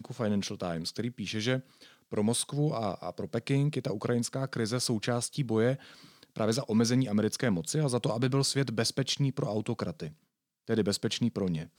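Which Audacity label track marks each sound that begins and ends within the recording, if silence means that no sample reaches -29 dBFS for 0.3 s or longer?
2.140000	5.740000	sound
6.370000	10.040000	sound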